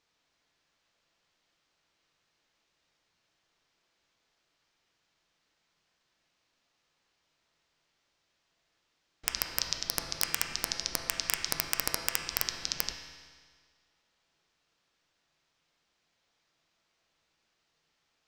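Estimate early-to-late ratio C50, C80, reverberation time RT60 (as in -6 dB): 5.0 dB, 6.0 dB, 1.7 s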